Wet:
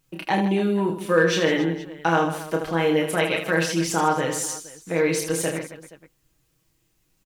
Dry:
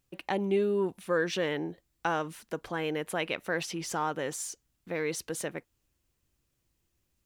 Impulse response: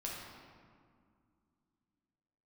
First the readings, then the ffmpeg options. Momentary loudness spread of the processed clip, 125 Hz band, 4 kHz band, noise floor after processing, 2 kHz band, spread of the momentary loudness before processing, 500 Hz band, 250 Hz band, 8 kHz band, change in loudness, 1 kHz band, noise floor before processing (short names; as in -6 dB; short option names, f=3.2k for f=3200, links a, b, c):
8 LU, +12.0 dB, +9.5 dB, -69 dBFS, +9.5 dB, 10 LU, +8.5 dB, +11.0 dB, +9.5 dB, +9.5 dB, +10.0 dB, -78 dBFS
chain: -filter_complex "[0:a]aecho=1:1:6.3:0.66,aecho=1:1:30|78|154.8|277.7|474.3:0.631|0.398|0.251|0.158|0.1,asplit=2[a][b];[b]volume=18dB,asoftclip=hard,volume=-18dB,volume=-8dB[c];[a][c]amix=inputs=2:normalize=0,volume=3dB"